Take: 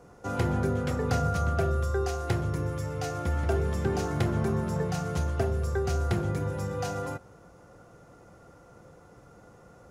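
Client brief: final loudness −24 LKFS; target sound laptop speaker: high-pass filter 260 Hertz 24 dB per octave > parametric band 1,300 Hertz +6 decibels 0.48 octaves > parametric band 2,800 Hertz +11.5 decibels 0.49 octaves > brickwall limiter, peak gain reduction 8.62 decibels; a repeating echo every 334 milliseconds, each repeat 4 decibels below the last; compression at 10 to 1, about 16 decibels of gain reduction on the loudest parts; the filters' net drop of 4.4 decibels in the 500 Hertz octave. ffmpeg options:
ffmpeg -i in.wav -af "equalizer=frequency=500:width_type=o:gain=-6,acompressor=threshold=-40dB:ratio=10,highpass=frequency=260:width=0.5412,highpass=frequency=260:width=1.3066,equalizer=frequency=1300:width_type=o:width=0.48:gain=6,equalizer=frequency=2800:width_type=o:width=0.49:gain=11.5,aecho=1:1:334|668|1002|1336|1670|2004|2338|2672|3006:0.631|0.398|0.25|0.158|0.0994|0.0626|0.0394|0.0249|0.0157,volume=22dB,alimiter=limit=-14dB:level=0:latency=1" out.wav

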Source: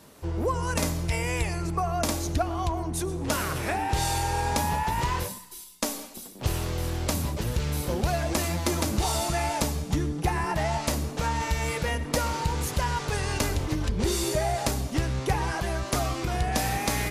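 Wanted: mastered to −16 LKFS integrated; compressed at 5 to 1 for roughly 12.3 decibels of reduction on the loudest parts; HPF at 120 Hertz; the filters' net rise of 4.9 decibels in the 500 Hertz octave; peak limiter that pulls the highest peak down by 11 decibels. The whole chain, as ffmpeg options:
ffmpeg -i in.wav -af "highpass=120,equalizer=frequency=500:width_type=o:gain=6.5,acompressor=threshold=-34dB:ratio=5,volume=21.5dB,alimiter=limit=-6dB:level=0:latency=1" out.wav

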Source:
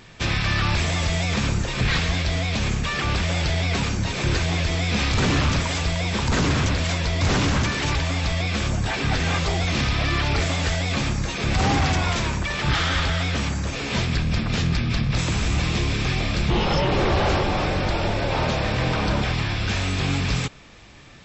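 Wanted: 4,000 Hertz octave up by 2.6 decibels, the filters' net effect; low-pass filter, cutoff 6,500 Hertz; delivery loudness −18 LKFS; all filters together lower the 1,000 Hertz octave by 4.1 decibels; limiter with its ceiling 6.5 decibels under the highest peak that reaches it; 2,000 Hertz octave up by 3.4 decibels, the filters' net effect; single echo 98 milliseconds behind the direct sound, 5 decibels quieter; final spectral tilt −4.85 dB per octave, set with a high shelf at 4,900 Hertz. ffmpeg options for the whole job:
ffmpeg -i in.wav -af "lowpass=6500,equalizer=frequency=1000:width_type=o:gain=-7,equalizer=frequency=2000:width_type=o:gain=5.5,equalizer=frequency=4000:width_type=o:gain=4.5,highshelf=frequency=4900:gain=-5,alimiter=limit=-17dB:level=0:latency=1,aecho=1:1:98:0.562,volume=5.5dB" out.wav

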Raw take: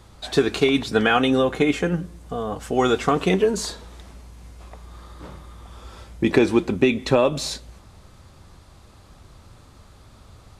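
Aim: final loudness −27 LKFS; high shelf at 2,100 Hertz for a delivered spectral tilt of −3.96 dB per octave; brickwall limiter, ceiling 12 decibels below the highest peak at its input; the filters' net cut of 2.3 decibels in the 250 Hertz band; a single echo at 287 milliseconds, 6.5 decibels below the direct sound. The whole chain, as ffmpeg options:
ffmpeg -i in.wav -af "equalizer=frequency=250:width_type=o:gain=-3,highshelf=frequency=2100:gain=3.5,alimiter=limit=-16dB:level=0:latency=1,aecho=1:1:287:0.473,volume=-0.5dB" out.wav

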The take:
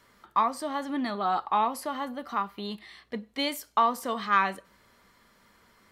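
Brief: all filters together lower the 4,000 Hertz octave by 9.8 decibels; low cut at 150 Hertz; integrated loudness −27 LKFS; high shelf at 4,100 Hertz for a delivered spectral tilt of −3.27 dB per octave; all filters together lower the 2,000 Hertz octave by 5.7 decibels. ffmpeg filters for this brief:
ffmpeg -i in.wav -af "highpass=150,equalizer=frequency=2000:width_type=o:gain=-5,equalizer=frequency=4000:width_type=o:gain=-8.5,highshelf=frequency=4100:gain=-4.5,volume=4dB" out.wav

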